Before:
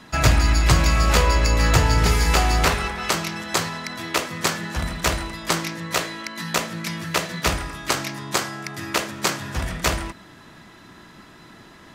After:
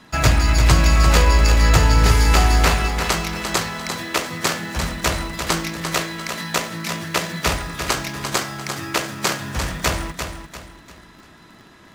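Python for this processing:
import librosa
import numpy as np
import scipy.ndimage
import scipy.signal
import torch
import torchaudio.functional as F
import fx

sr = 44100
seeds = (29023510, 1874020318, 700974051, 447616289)

p1 = fx.quant_dither(x, sr, seeds[0], bits=6, dither='none')
p2 = x + F.gain(torch.from_numpy(p1), -8.0).numpy()
p3 = fx.echo_feedback(p2, sr, ms=346, feedback_pct=35, wet_db=-7.5)
y = F.gain(torch.from_numpy(p3), -2.0).numpy()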